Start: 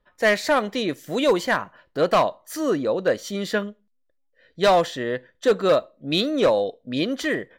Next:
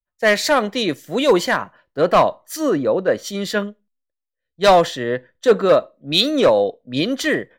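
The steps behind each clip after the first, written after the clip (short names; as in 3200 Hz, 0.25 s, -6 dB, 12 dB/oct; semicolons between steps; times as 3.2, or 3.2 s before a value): maximiser +14.5 dB; three-band expander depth 100%; gain -8 dB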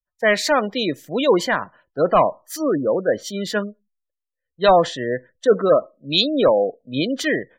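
spectral gate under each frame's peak -25 dB strong; gain -1.5 dB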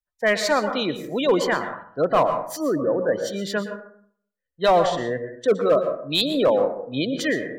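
hard clip -8.5 dBFS, distortion -21 dB; plate-style reverb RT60 0.6 s, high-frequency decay 0.4×, pre-delay 0.105 s, DRR 8 dB; gain -3 dB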